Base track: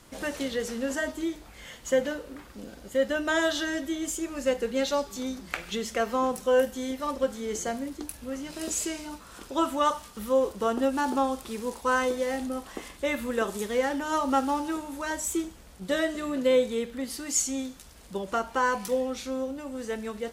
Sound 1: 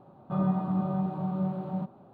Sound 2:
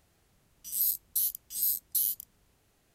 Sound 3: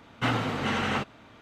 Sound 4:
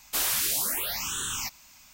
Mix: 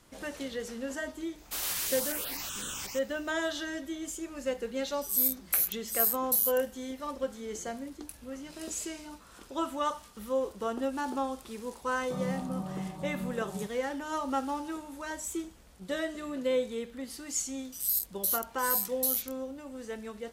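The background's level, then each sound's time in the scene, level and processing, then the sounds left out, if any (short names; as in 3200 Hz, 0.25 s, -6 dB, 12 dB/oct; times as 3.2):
base track -6.5 dB
1.38 add 4 -8.5 dB + reverse delay 0.124 s, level -1.5 dB
4.37 add 2 -11 dB + tilt +3.5 dB/oct
11.81 add 1 -8 dB
17.08 add 2 -1 dB
not used: 3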